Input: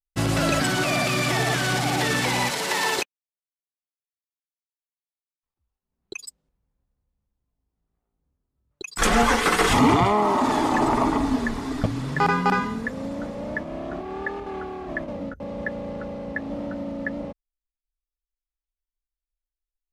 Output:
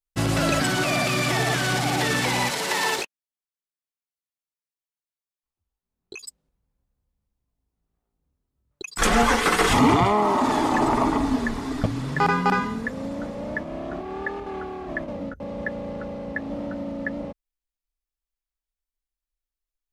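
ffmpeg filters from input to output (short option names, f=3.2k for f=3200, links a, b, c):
-filter_complex "[0:a]asplit=3[a][b][c];[a]afade=t=out:st=2.95:d=0.02[d];[b]flanger=delay=17.5:depth=5.9:speed=2.9,afade=t=in:st=2.95:d=0.02,afade=t=out:st=6.21:d=0.02[e];[c]afade=t=in:st=6.21:d=0.02[f];[d][e][f]amix=inputs=3:normalize=0"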